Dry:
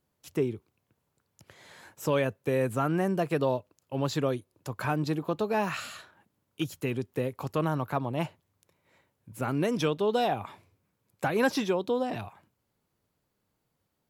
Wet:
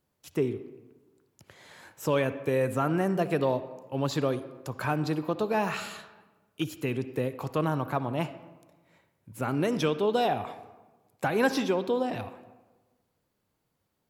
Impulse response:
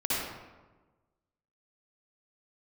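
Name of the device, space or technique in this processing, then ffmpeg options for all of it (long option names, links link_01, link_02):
filtered reverb send: -filter_complex "[0:a]asplit=2[link_01][link_02];[link_02]highpass=160,lowpass=5600[link_03];[1:a]atrim=start_sample=2205[link_04];[link_03][link_04]afir=irnorm=-1:irlink=0,volume=-21dB[link_05];[link_01][link_05]amix=inputs=2:normalize=0"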